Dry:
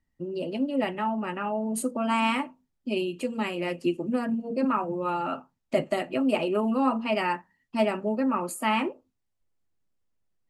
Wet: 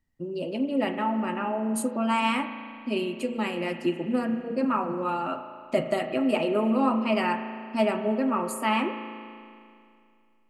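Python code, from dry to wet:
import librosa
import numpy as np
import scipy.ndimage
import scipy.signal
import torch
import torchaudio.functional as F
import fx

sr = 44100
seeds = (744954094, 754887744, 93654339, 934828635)

y = fx.rev_spring(x, sr, rt60_s=2.4, pass_ms=(36,), chirp_ms=45, drr_db=7.5)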